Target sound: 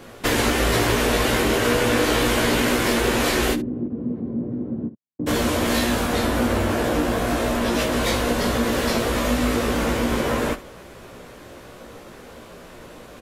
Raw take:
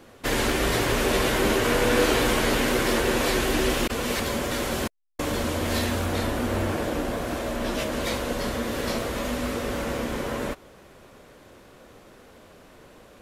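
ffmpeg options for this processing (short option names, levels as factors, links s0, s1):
-filter_complex "[0:a]acompressor=threshold=0.0501:ratio=3,asplit=3[s0][s1][s2];[s0]afade=t=out:st=3.53:d=0.02[s3];[s1]asuperpass=centerf=190:order=4:qfactor=1,afade=t=in:st=3.53:d=0.02,afade=t=out:st=5.26:d=0.02[s4];[s2]afade=t=in:st=5.26:d=0.02[s5];[s3][s4][s5]amix=inputs=3:normalize=0,aecho=1:1:17|73:0.596|0.168,volume=2.24"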